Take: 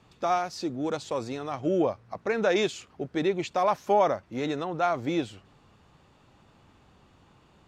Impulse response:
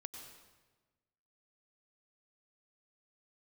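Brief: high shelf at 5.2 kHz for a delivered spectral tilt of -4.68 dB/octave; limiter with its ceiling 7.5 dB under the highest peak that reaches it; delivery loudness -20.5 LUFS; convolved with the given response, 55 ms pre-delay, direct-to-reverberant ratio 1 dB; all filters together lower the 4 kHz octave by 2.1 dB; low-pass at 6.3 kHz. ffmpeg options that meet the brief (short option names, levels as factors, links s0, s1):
-filter_complex "[0:a]lowpass=6300,equalizer=f=4000:t=o:g=-3.5,highshelf=f=5200:g=4,alimiter=limit=0.1:level=0:latency=1,asplit=2[s0][s1];[1:a]atrim=start_sample=2205,adelay=55[s2];[s1][s2]afir=irnorm=-1:irlink=0,volume=1.41[s3];[s0][s3]amix=inputs=2:normalize=0,volume=2.51"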